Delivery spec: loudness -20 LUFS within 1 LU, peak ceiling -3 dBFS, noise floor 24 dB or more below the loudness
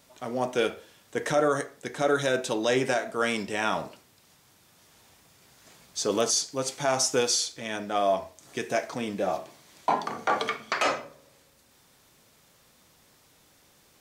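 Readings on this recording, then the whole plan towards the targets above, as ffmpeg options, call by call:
loudness -28.0 LUFS; peak level -12.5 dBFS; loudness target -20.0 LUFS
-> -af "volume=2.51"

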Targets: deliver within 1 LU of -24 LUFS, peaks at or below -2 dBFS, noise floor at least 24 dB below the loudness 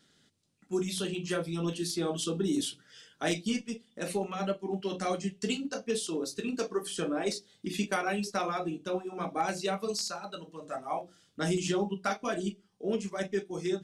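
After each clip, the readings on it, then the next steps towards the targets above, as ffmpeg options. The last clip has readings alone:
loudness -33.5 LUFS; peak level -18.0 dBFS; loudness target -24.0 LUFS
-> -af "volume=2.99"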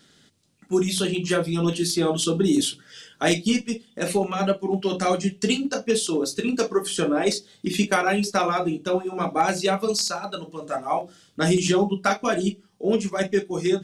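loudness -24.0 LUFS; peak level -8.5 dBFS; noise floor -59 dBFS

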